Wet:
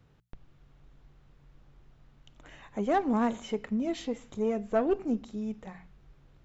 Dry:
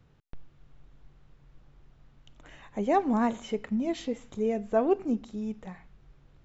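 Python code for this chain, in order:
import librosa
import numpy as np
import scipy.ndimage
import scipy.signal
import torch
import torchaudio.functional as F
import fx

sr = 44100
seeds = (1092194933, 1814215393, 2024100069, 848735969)

y = fx.diode_clip(x, sr, knee_db=-20.5)
y = fx.hum_notches(y, sr, base_hz=60, count=3)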